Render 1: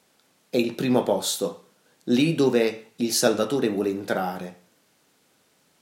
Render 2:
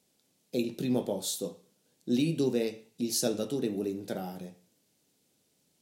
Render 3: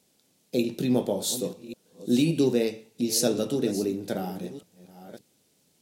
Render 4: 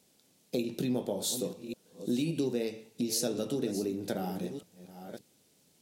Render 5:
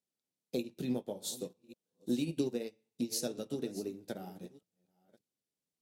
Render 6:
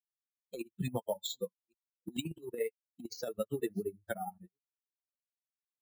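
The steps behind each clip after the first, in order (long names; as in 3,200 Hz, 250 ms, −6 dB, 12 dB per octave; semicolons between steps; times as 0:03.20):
parametric band 1,300 Hz −14 dB 2 octaves; level −5 dB
delay that plays each chunk backwards 579 ms, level −14 dB; level +5 dB
downward compressor 3 to 1, threshold −30 dBFS, peak gain reduction 9.5 dB
expander for the loud parts 2.5 to 1, over −45 dBFS
spectral dynamics exaggerated over time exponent 3; compressor whose output falls as the input rises −45 dBFS, ratio −0.5; bad sample-rate conversion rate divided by 4×, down filtered, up hold; level +10 dB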